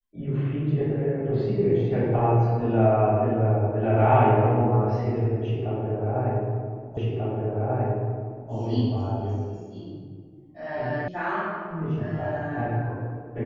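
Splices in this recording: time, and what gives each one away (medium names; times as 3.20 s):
6.97 s: repeat of the last 1.54 s
11.08 s: sound stops dead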